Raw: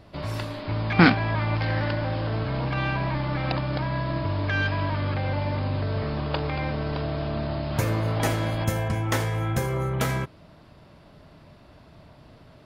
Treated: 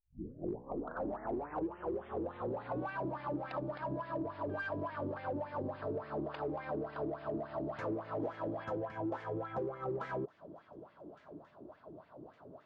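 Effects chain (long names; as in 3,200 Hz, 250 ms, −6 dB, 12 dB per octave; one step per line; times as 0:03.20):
turntable start at the beginning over 2.96 s
parametric band 2,100 Hz −13 dB 0.67 octaves
delay with a high-pass on its return 1,163 ms, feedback 47%, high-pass 2,500 Hz, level −21 dB
LFO wah 3.5 Hz 330–2,100 Hz, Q 4.7
in parallel at −5.5 dB: hard clipping −40 dBFS, distortion −8 dB
on the sum: low-pass filter 5,300 Hz 12 dB per octave
tilt shelving filter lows +5.5 dB
downward compressor 4 to 1, threshold −41 dBFS, peak gain reduction 13.5 dB
level +4.5 dB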